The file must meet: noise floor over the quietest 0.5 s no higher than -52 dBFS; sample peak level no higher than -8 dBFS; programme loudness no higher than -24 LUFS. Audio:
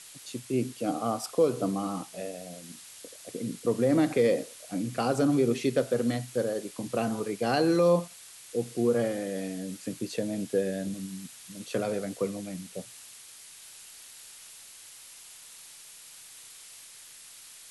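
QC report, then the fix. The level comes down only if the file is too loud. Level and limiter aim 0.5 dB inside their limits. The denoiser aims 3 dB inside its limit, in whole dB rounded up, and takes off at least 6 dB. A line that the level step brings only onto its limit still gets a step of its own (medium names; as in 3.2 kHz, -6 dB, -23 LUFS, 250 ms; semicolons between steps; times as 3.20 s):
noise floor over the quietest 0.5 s -49 dBFS: fail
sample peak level -12.5 dBFS: pass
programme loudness -29.5 LUFS: pass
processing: noise reduction 6 dB, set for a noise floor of -49 dBFS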